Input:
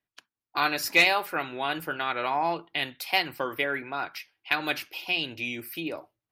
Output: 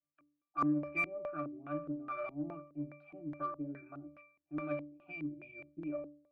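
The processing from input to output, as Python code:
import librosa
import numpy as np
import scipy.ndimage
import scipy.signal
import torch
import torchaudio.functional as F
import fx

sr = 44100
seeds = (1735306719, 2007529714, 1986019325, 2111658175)

y = fx.octave_resonator(x, sr, note='D', decay_s=0.51)
y = fx.filter_lfo_lowpass(y, sr, shape='square', hz=2.4, low_hz=300.0, high_hz=1600.0, q=2.1)
y = fx.cheby_harmonics(y, sr, harmonics=(8,), levels_db=(-39,), full_scale_db=-29.5)
y = F.gain(torch.from_numpy(y), 7.5).numpy()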